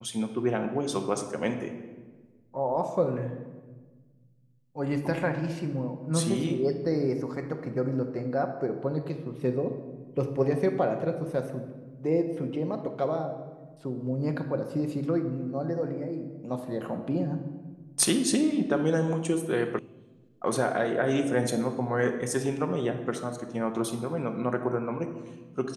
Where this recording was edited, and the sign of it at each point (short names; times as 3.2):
19.79 sound cut off